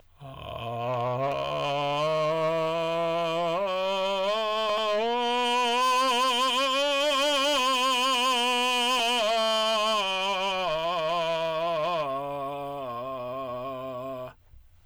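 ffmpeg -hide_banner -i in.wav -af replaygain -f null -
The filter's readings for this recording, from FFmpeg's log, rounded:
track_gain = +6.6 dB
track_peak = 0.059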